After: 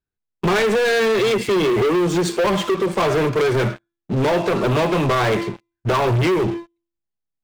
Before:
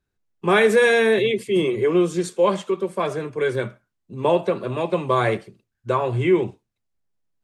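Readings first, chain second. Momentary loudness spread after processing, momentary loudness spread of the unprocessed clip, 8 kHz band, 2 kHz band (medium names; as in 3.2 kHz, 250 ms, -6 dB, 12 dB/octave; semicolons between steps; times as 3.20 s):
8 LU, 12 LU, +5.5 dB, +0.5 dB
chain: low-pass 5.4 kHz 12 dB/octave; band-stop 540 Hz, Q 16; de-hum 340.2 Hz, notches 30; compression 20:1, threshold -24 dBFS, peak gain reduction 13 dB; waveshaping leveller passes 5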